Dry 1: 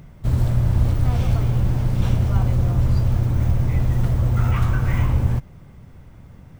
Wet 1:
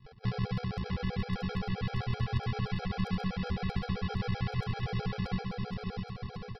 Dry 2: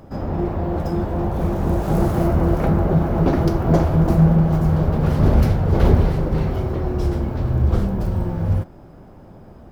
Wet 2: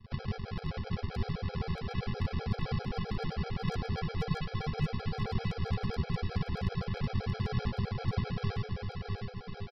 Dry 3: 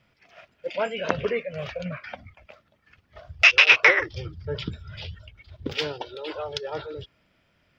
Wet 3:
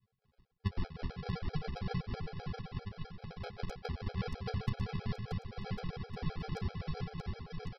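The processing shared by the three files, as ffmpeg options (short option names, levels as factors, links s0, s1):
-filter_complex "[0:a]aeval=exprs='if(lt(val(0),0),0.447*val(0),val(0))':c=same,bandreject=f=180.2:t=h:w=4,bandreject=f=360.4:t=h:w=4,bandreject=f=540.6:t=h:w=4,bandreject=f=720.8:t=h:w=4,agate=range=0.282:threshold=0.00708:ratio=16:detection=peak,equalizer=f=125:t=o:w=1:g=12,equalizer=f=250:t=o:w=1:g=-5,equalizer=f=500:t=o:w=1:g=4,equalizer=f=1000:t=o:w=1:g=11,equalizer=f=4000:t=o:w=1:g=-10,acompressor=threshold=0.0501:ratio=8,aresample=11025,acrusher=samples=36:mix=1:aa=0.000001,aresample=44100,flanger=delay=8.9:depth=3.5:regen=-16:speed=0.41:shape=sinusoidal,aeval=exprs='0.0794*(abs(mod(val(0)/0.0794+3,4)-2)-1)':c=same,asplit=2[s0][s1];[s1]aecho=0:1:630|1102|1457|1723|1922:0.631|0.398|0.251|0.158|0.1[s2];[s0][s2]amix=inputs=2:normalize=0,afftfilt=real='re*gt(sin(2*PI*7.7*pts/sr)*(1-2*mod(floor(b*sr/1024/430),2)),0)':imag='im*gt(sin(2*PI*7.7*pts/sr)*(1-2*mod(floor(b*sr/1024/430),2)),0)':win_size=1024:overlap=0.75"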